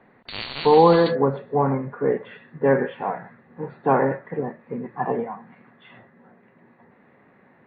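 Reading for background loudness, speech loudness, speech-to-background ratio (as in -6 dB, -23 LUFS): -33.0 LUFS, -21.5 LUFS, 11.5 dB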